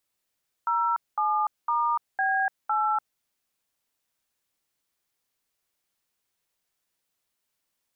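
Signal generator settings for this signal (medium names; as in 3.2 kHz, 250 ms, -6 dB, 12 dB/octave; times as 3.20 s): DTMF "07*B8", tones 293 ms, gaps 213 ms, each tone -24.5 dBFS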